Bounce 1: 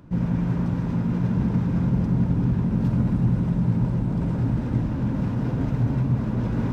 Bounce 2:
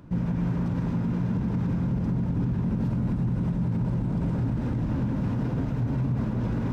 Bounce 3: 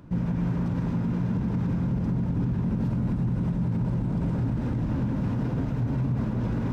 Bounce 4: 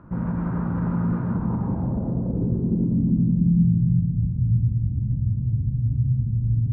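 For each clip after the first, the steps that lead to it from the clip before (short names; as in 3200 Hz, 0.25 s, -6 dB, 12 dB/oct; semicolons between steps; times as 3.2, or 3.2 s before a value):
limiter -19.5 dBFS, peak gain reduction 8.5 dB
nothing audible
low-pass sweep 1300 Hz -> 110 Hz, 1.25–4.14; reverb RT60 2.5 s, pre-delay 7 ms, DRR 7 dB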